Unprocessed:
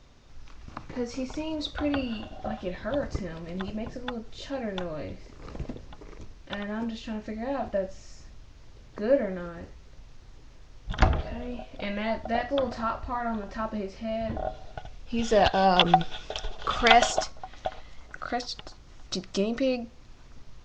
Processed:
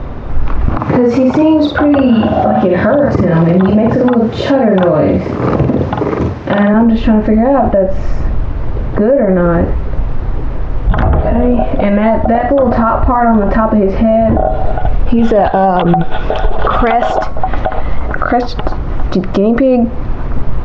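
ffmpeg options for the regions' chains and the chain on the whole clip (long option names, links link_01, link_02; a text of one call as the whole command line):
ffmpeg -i in.wav -filter_complex "[0:a]asettb=1/sr,asplit=3[link_01][link_02][link_03];[link_01]atrim=end=0.774[link_04];[link_02]atrim=start=0.77:end=6.74,asetpts=PTS-STARTPTS,afade=type=in:duration=0.004:curve=qsin,afade=type=out:start_time=5.966:duration=0.004:curve=qsin,highpass=frequency=91:width=0.5412,highpass=frequency=91:width=1.3066,aemphasis=mode=production:type=50fm,asplit=2[link_05][link_06];[link_06]adelay=48,volume=-3dB[link_07];[link_05][link_07]amix=inputs=2:normalize=0,atrim=end_sample=263277[link_08];[link_03]atrim=start=6.736[link_09];[link_04][link_08]acrossfade=duration=0.004:curve1=hsin:curve2=qsin[link_10];[link_10][link_09]acrossfade=duration=0.004:curve1=qsin:curve2=hsin,acompressor=threshold=-35dB:ratio=4,lowpass=1200,alimiter=level_in=35dB:limit=-1dB:release=50:level=0:latency=1,volume=-1dB" out.wav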